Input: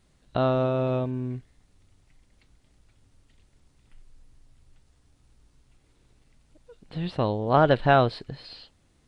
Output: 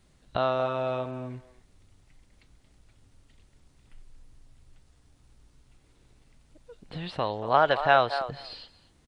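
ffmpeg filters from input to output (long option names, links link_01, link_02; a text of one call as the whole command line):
ffmpeg -i in.wav -filter_complex "[0:a]acrossover=split=580[link_01][link_02];[link_01]acompressor=threshold=-37dB:ratio=6[link_03];[link_02]asplit=2[link_04][link_05];[link_05]adelay=233,lowpass=frequency=1100:poles=1,volume=-7.5dB,asplit=2[link_06][link_07];[link_07]adelay=233,lowpass=frequency=1100:poles=1,volume=0.15[link_08];[link_04][link_06][link_08]amix=inputs=3:normalize=0[link_09];[link_03][link_09]amix=inputs=2:normalize=0,volume=1.5dB" out.wav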